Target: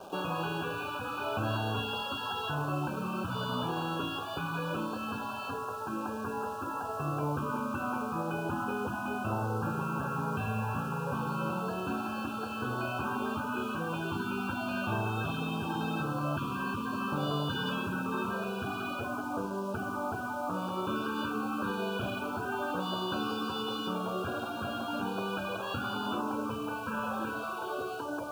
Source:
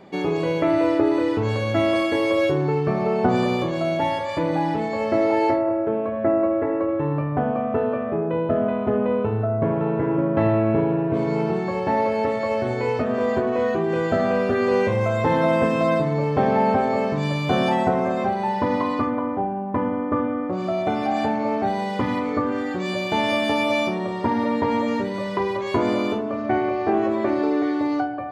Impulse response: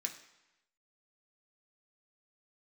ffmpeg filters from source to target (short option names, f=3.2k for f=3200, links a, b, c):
-filter_complex "[0:a]acrossover=split=550 2900:gain=0.1 1 0.0794[a][b][c];[a][b][c]amix=inputs=3:normalize=0,afftfilt=real='re*lt(hypot(re,im),0.0708)':imag='im*lt(hypot(re,im),0.0708)':win_size=1024:overlap=0.75,lowshelf=f=480:g=7.5,asplit=2[d][e];[e]acrusher=bits=7:mix=0:aa=0.000001,volume=-4dB[f];[d][f]amix=inputs=2:normalize=0,asuperstop=centerf=2000:order=20:qfactor=2.5"